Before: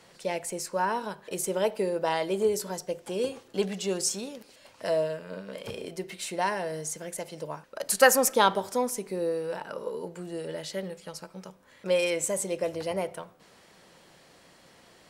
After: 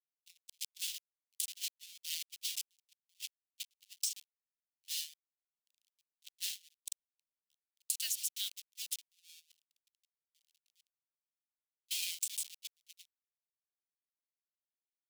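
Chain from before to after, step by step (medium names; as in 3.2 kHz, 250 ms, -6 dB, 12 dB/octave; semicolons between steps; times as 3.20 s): send-on-delta sampling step -23.5 dBFS; steep high-pass 2.9 kHz 36 dB/octave; gate -38 dBFS, range -33 dB; compression 10:1, threshold -35 dBFS, peak gain reduction 14.5 dB; trim +2.5 dB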